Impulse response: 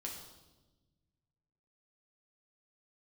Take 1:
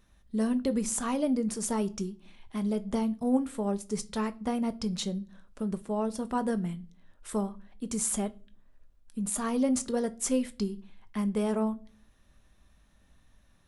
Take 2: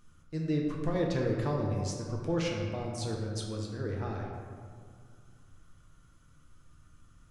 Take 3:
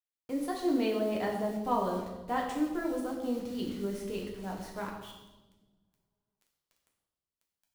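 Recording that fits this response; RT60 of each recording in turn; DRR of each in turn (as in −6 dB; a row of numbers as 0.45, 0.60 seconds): 3; non-exponential decay, 2.1 s, 1.1 s; 10.0, −1.5, −1.0 decibels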